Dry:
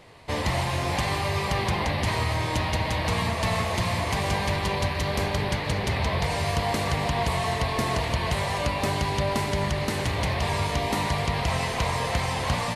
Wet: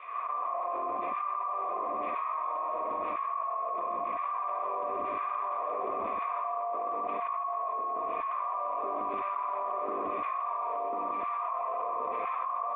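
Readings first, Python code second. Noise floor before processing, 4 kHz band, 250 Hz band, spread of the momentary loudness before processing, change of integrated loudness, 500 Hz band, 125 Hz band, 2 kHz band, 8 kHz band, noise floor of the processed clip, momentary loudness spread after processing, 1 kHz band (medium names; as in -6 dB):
-29 dBFS, under -30 dB, -17.0 dB, 1 LU, -6.5 dB, -7.0 dB, under -35 dB, -18.0 dB, under -40 dB, -34 dBFS, 0 LU, -1.0 dB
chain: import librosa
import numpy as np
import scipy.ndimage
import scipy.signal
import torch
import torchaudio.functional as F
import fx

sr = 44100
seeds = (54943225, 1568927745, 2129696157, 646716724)

p1 = fx.peak_eq(x, sr, hz=1200.0, db=14.0, octaves=0.24)
p2 = fx.hum_notches(p1, sr, base_hz=50, count=2)
p3 = fx.filter_lfo_highpass(p2, sr, shape='saw_down', hz=0.99, low_hz=220.0, high_hz=2500.0, q=1.5)
p4 = fx.quant_dither(p3, sr, seeds[0], bits=6, dither='none')
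p5 = p3 + (p4 * 10.0 ** (-11.0 / 20.0))
p6 = fx.formant_cascade(p5, sr, vowel='a')
p7 = fx.air_absorb(p6, sr, metres=230.0)
p8 = fx.fixed_phaser(p7, sr, hz=340.0, stages=4)
p9 = p8 + fx.echo_single(p8, sr, ms=126, db=-6.0, dry=0)
y = fx.env_flatten(p9, sr, amount_pct=100)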